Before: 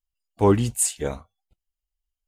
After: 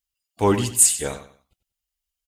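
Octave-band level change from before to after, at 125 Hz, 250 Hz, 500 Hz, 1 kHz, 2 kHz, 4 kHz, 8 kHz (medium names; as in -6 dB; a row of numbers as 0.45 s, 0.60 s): -2.5 dB, -1.0 dB, -1.0 dB, +1.5 dB, +5.0 dB, +7.0 dB, +8.0 dB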